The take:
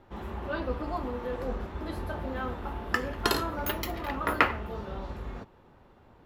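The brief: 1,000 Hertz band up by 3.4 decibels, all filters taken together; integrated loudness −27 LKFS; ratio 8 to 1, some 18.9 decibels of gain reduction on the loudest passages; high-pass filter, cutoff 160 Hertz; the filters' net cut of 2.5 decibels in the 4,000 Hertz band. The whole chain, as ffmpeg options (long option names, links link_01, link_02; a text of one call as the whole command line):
ffmpeg -i in.wav -af "highpass=160,equalizer=frequency=1000:width_type=o:gain=4.5,equalizer=frequency=4000:width_type=o:gain=-3.5,acompressor=threshold=-39dB:ratio=8,volume=16dB" out.wav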